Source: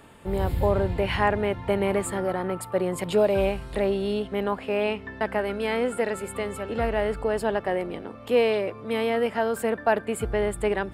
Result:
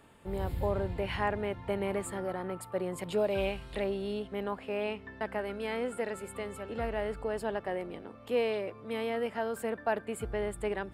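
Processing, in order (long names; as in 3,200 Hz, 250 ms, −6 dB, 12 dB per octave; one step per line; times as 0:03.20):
0:03.31–0:03.84: parametric band 3,100 Hz +7 dB 1.2 octaves
level −8.5 dB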